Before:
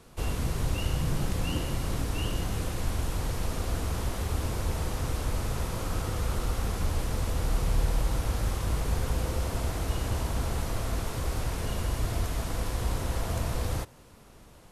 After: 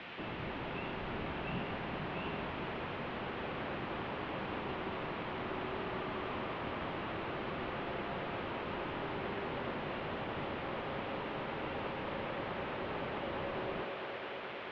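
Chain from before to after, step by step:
high-shelf EQ 2,400 Hz −9 dB
bit-depth reduction 6 bits, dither triangular
on a send: delay with a band-pass on its return 219 ms, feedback 83%, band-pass 940 Hz, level −5 dB
on the sum: single-sideband voice off tune −120 Hz 230–3,200 Hz
level −3 dB

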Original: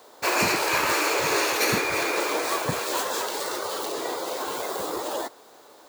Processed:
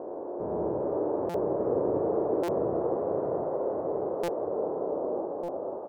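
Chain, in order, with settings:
spectrum averaged block by block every 400 ms
inverse Chebyshev low-pass filter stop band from 2,800 Hz, stop band 70 dB
on a send: reverse bouncing-ball delay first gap 70 ms, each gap 1.25×, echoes 5
on the sum: delay with pitch and tempo change per echo 799 ms, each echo +1 semitone, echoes 3
buffer that repeats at 0:01.29/0:02.43/0:04.23/0:05.43, samples 256, times 8

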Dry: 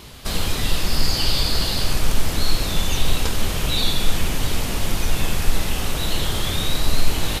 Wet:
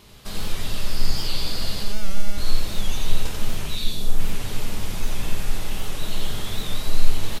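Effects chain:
0:01.83–0:02.38: phases set to zero 203 Hz
0:03.66–0:04.19: parametric band 450 Hz → 3,800 Hz −10 dB 1.7 octaves
single-tap delay 90 ms −3.5 dB
convolution reverb RT60 0.25 s, pre-delay 5 ms, DRR 8.5 dB
wow of a warped record 78 rpm, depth 100 cents
level −9.5 dB

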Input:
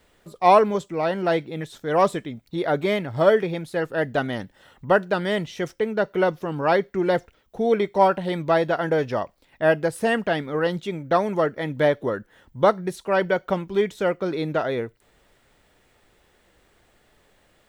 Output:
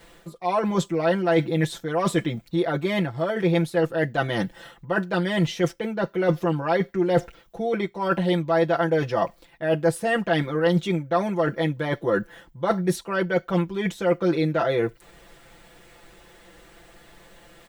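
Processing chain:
reversed playback
downward compressor 16 to 1, threshold −29 dBFS, peak gain reduction 20 dB
reversed playback
comb filter 5.9 ms, depth 86%
level +7.5 dB

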